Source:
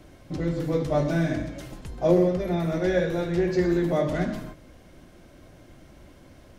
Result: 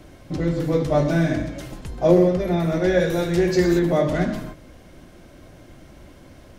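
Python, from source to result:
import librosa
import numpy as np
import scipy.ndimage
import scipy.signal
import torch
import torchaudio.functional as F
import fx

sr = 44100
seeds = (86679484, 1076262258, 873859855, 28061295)

y = fx.high_shelf(x, sr, hz=fx.line((2.99, 6200.0), (3.78, 4000.0)), db=12.0, at=(2.99, 3.78), fade=0.02)
y = y * 10.0 ** (4.5 / 20.0)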